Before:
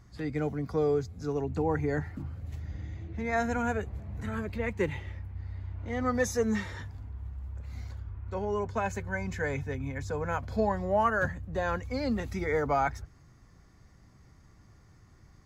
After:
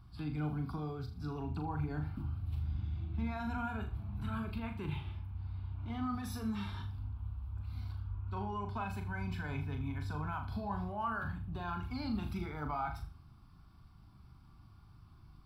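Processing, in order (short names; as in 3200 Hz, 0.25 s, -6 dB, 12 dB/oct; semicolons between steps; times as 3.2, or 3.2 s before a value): limiter -25.5 dBFS, peak gain reduction 10 dB; fixed phaser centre 1900 Hz, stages 6; flutter echo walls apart 6.8 m, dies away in 0.36 s; gain -1 dB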